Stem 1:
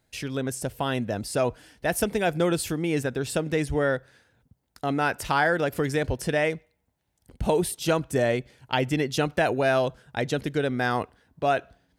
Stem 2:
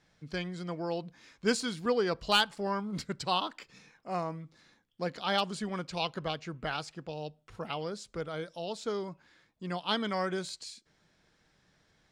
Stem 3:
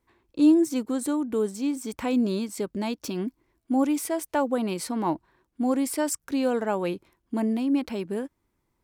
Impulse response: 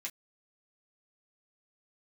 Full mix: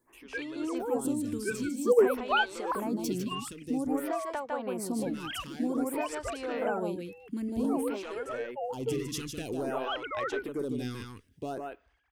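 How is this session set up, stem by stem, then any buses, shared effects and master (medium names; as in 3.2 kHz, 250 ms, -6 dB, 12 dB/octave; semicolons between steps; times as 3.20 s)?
0.0 dB, 0.00 s, bus A, no send, echo send -6.5 dB, fifteen-band graphic EQ 160 Hz -10 dB, 630 Hz -12 dB, 1.6 kHz -10 dB, 4 kHz -7 dB; overload inside the chain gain 26 dB; auto duck -21 dB, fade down 0.55 s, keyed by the third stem
+2.0 dB, 0.00 s, no bus, no send, no echo send, formants replaced by sine waves
+1.0 dB, 0.00 s, bus A, no send, echo send -10 dB, none
bus A: 0.0 dB, compression 6:1, threshold -29 dBFS, peak gain reduction 15 dB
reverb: none
echo: delay 152 ms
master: lamp-driven phase shifter 0.52 Hz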